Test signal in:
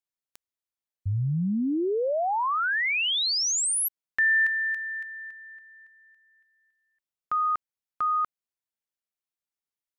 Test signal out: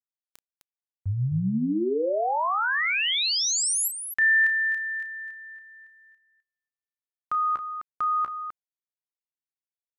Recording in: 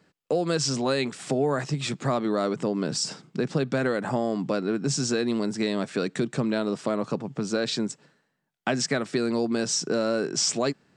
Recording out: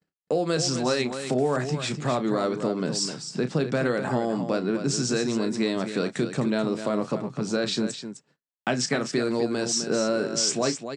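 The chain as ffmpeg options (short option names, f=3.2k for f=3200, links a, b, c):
-af "agate=range=-33dB:threshold=-57dB:ratio=3:release=47:detection=rms,aecho=1:1:32.07|256.6:0.282|0.355"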